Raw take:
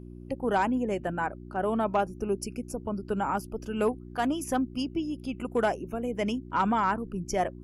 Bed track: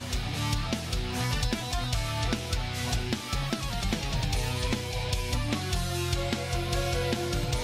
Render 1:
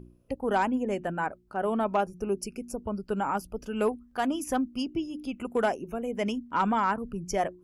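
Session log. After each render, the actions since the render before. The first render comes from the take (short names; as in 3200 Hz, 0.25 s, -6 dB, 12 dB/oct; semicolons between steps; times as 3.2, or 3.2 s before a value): de-hum 60 Hz, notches 6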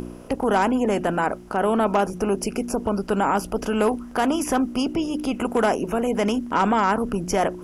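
per-bin compression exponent 0.6; in parallel at -1 dB: limiter -20.5 dBFS, peak gain reduction 8 dB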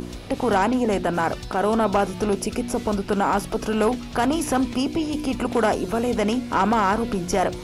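add bed track -8 dB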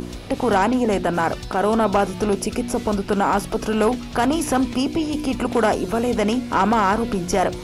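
gain +2 dB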